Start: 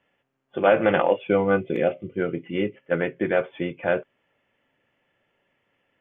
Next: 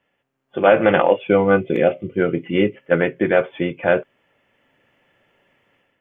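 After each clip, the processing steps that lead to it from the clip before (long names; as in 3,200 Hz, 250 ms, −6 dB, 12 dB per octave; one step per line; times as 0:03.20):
automatic gain control gain up to 9 dB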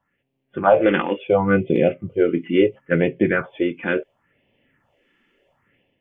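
all-pass phaser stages 4, 0.72 Hz, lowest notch 100–1,400 Hz
high-shelf EQ 3,100 Hz −8 dB
level +2.5 dB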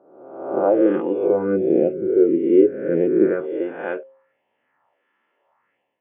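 peak hold with a rise ahead of every peak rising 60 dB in 0.94 s
band-pass filter sweep 360 Hz → 1,000 Hz, 0:03.20–0:04.16
hum removal 133.7 Hz, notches 4
level +2.5 dB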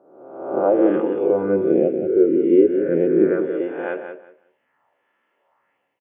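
repeating echo 182 ms, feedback 20%, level −8.5 dB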